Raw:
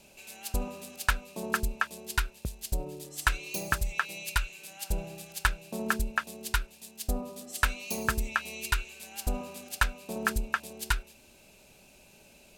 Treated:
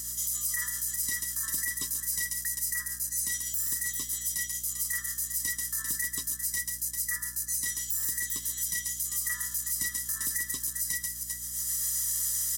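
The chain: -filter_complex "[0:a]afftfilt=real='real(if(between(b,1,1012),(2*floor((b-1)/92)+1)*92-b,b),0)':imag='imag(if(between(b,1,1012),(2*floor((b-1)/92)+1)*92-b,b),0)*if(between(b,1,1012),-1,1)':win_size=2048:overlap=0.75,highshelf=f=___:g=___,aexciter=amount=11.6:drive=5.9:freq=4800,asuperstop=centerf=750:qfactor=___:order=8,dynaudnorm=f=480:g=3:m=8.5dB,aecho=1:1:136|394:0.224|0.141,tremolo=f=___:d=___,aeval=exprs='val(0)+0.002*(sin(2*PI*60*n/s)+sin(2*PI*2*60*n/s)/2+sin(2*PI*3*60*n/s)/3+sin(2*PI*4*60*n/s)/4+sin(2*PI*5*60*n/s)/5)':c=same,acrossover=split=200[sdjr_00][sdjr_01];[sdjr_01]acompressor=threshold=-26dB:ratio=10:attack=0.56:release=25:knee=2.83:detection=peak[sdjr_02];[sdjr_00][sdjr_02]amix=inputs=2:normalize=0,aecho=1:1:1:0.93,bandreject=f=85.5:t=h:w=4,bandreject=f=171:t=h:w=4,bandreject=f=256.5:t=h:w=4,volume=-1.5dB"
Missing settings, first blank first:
2200, 9, 1.7, 7.4, 0.4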